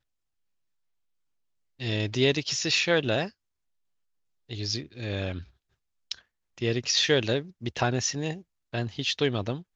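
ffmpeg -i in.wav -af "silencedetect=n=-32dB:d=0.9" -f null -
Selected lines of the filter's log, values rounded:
silence_start: 0.00
silence_end: 1.81 | silence_duration: 1.81
silence_start: 3.27
silence_end: 4.51 | silence_duration: 1.24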